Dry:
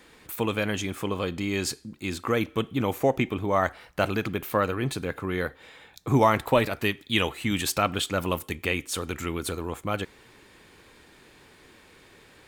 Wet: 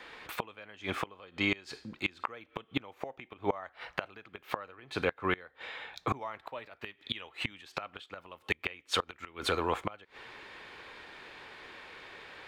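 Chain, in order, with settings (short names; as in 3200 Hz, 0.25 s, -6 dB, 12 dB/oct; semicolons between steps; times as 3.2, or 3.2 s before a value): three-band isolator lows -13 dB, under 500 Hz, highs -21 dB, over 4400 Hz; flipped gate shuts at -23 dBFS, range -26 dB; gain +7.5 dB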